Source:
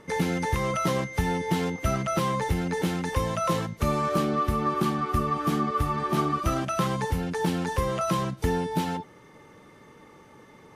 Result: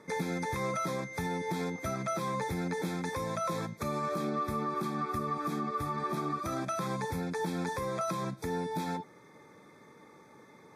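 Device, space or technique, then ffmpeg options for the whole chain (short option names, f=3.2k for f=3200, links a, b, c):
PA system with an anti-feedback notch: -af "highpass=130,asuperstop=centerf=2900:order=20:qfactor=4.9,alimiter=limit=-20.5dB:level=0:latency=1:release=131,volume=-4dB"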